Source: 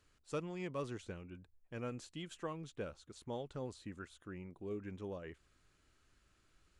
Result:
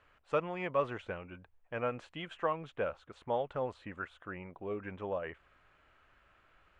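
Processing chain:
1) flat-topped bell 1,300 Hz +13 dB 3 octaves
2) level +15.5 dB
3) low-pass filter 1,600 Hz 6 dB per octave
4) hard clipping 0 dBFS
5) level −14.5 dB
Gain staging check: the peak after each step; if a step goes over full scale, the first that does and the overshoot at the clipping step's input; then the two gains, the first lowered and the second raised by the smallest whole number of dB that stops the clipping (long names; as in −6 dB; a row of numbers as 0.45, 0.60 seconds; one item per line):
−18.0, −2.5, −3.5, −3.5, −18.0 dBFS
no step passes full scale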